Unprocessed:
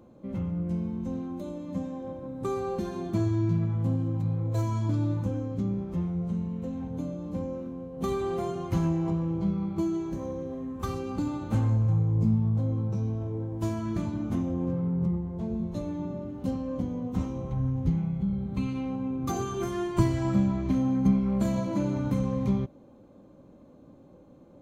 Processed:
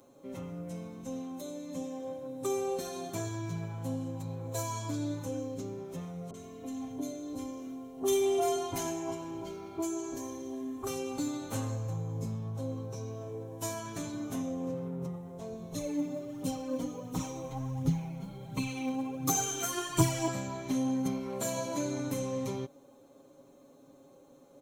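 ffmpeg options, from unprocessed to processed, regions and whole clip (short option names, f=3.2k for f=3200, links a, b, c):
-filter_complex "[0:a]asettb=1/sr,asplit=3[a][b][c];[a]atrim=end=6.304[d];[b]atrim=start=6.3:end=10.87,asetpts=PTS-STARTPTS,afade=t=in:d=0.004:c=qsin,afade=t=out:st=4.566:d=0.004:c=qsin,aecho=1:1:2.9:0.75,atrim=end_sample=201537,acrossover=split=1200[e][f];[f]adelay=40[g];[e][g]amix=inputs=2:normalize=0,atrim=end_sample=201537[h];[c]atrim=start=10.866[i];[d][h]acrossfade=d=0.004:c1=hsin:c2=qsin[j];[j][i]acrossfade=d=0.004:c1=qsin:c2=hsin,asettb=1/sr,asplit=3[k][l][m];[k]atrim=end=15.724[n];[l]atrim=start=15.72:end=20.28,asetpts=PTS-STARTPTS,afade=t=in:d=0.004:c=qsin,afade=t=out:st=4.556:d=0.004:c=qsin,aecho=1:1:6.4:0.56,atrim=end_sample=201096,aphaser=in_gain=1:out_gain=1:delay=4.5:decay=0.52:speed=1.4:type=triangular[o];[m]atrim=start=20.276[p];[n][o]acrossfade=d=0.004:c1=hsin:c2=qsin[q];[q][p]acrossfade=d=0.004:c1=qsin:c2=hsin,bass=f=250:g=-13,treble=f=4k:g=14,bandreject=f=4.7k:w=11,aecho=1:1:7.3:0.83,volume=-3dB"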